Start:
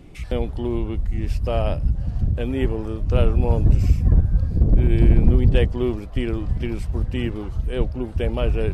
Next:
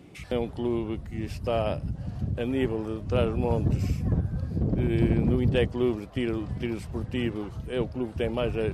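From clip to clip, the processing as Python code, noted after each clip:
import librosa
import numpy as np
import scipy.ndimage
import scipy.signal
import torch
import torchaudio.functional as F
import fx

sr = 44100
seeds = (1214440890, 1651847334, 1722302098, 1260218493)

y = scipy.signal.sosfilt(scipy.signal.butter(2, 120.0, 'highpass', fs=sr, output='sos'), x)
y = F.gain(torch.from_numpy(y), -2.0).numpy()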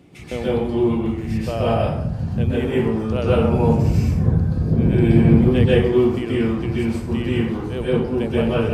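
y = fx.rev_plate(x, sr, seeds[0], rt60_s=0.75, hf_ratio=0.6, predelay_ms=115, drr_db=-7.5)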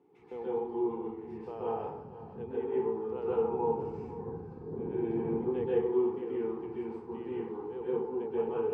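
y = fx.double_bandpass(x, sr, hz=610.0, octaves=1.0)
y = y + 10.0 ** (-15.5 / 20.0) * np.pad(y, (int(494 * sr / 1000.0), 0))[:len(y)]
y = F.gain(torch.from_numpy(y), -4.0).numpy()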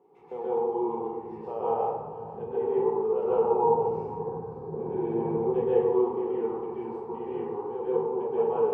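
y = fx.band_shelf(x, sr, hz=710.0, db=10.0, octaves=1.7)
y = fx.room_shoebox(y, sr, seeds[1], volume_m3=590.0, walls='mixed', distance_m=1.1)
y = F.gain(torch.from_numpy(y), -2.5).numpy()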